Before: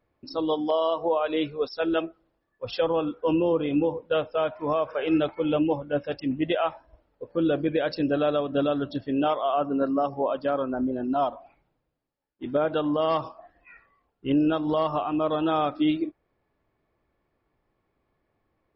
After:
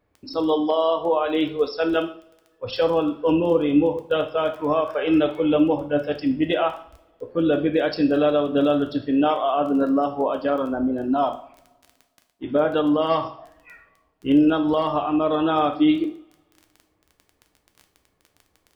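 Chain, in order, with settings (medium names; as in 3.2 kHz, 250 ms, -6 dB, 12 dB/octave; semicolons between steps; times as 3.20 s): crackle 13 per s -37 dBFS; two-slope reverb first 0.47 s, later 1.9 s, from -27 dB, DRR 5.5 dB; trim +3 dB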